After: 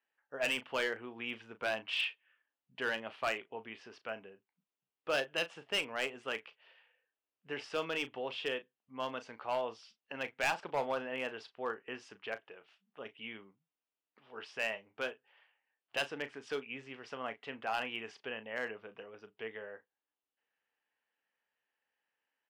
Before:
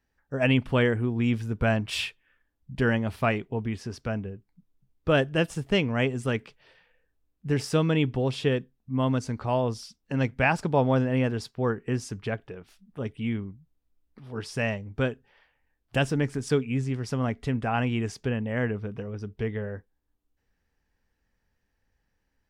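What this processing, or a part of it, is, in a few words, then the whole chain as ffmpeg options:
megaphone: -filter_complex "[0:a]highpass=610,lowpass=3000,equalizer=frequency=2900:width_type=o:width=0.43:gain=8,asoftclip=type=hard:threshold=-21dB,asplit=2[link_01][link_02];[link_02]adelay=36,volume=-12.5dB[link_03];[link_01][link_03]amix=inputs=2:normalize=0,volume=-5.5dB"

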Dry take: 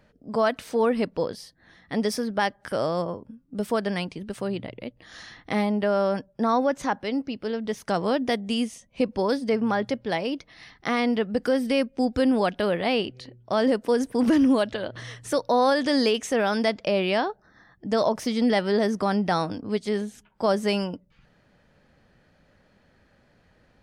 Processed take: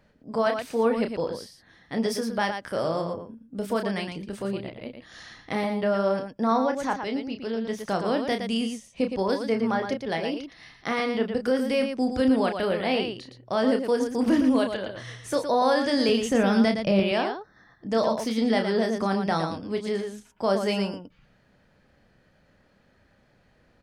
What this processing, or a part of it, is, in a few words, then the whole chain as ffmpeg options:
slapback doubling: -filter_complex "[0:a]asettb=1/sr,asplit=3[link_01][link_02][link_03];[link_01]atrim=end=16.094[link_04];[link_02]atrim=start=16.09:end=17,asetpts=PTS-STARTPTS,afade=type=in:duration=0.004:curve=qsin,afade=type=out:start_time=0.906:duration=0.004:curve=qsin,bass=frequency=250:gain=13,treble=frequency=4000:gain=0[link_05];[link_03]atrim=start=16.996[link_06];[link_04][link_05]acrossfade=duration=0.004:curve1=hsin:curve2=qsin[link_07];[link_07][link_06]acrossfade=duration=0.004:curve1=qsin:curve2=hsin,asplit=3[link_08][link_09][link_10];[link_09]adelay=31,volume=-7dB[link_11];[link_10]adelay=115,volume=-7dB[link_12];[link_08][link_11][link_12]amix=inputs=3:normalize=0,volume=-2.5dB"

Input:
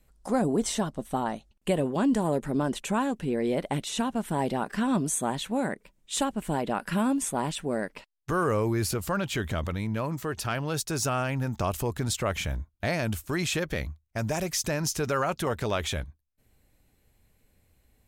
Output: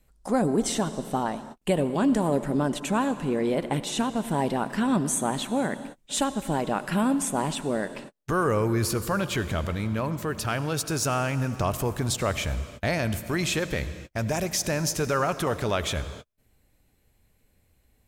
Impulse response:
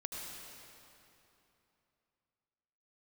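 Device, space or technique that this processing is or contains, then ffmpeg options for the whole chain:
keyed gated reverb: -filter_complex "[0:a]asplit=3[link_01][link_02][link_03];[1:a]atrim=start_sample=2205[link_04];[link_02][link_04]afir=irnorm=-1:irlink=0[link_05];[link_03]apad=whole_len=797227[link_06];[link_05][link_06]sidechaingate=range=-51dB:threshold=-52dB:ratio=16:detection=peak,volume=-8.5dB[link_07];[link_01][link_07]amix=inputs=2:normalize=0"

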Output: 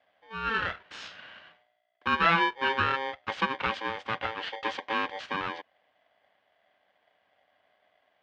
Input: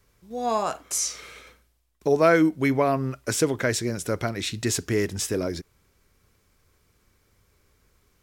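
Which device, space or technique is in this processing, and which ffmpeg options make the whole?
ring modulator pedal into a guitar cabinet: -af "aeval=exprs='val(0)*sgn(sin(2*PI*670*n/s))':channel_layout=same,highpass=91,equalizer=frequency=140:width_type=q:width=4:gain=-9,equalizer=frequency=240:width_type=q:width=4:gain=-6,equalizer=frequency=360:width_type=q:width=4:gain=-6,equalizer=frequency=1600:width_type=q:width=4:gain=7,equalizer=frequency=3100:width_type=q:width=4:gain=4,lowpass=frequency=3400:width=0.5412,lowpass=frequency=3400:width=1.3066,volume=-5.5dB"

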